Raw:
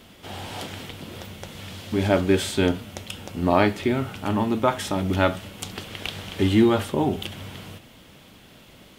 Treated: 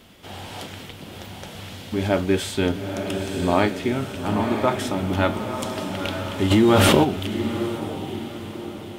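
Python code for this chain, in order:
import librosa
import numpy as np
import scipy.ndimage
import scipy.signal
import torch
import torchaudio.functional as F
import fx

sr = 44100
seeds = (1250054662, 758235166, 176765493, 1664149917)

y = fx.echo_diffused(x, sr, ms=930, feedback_pct=45, wet_db=-5.5)
y = fx.env_flatten(y, sr, amount_pct=100, at=(6.5, 7.03), fade=0.02)
y = F.gain(torch.from_numpy(y), -1.0).numpy()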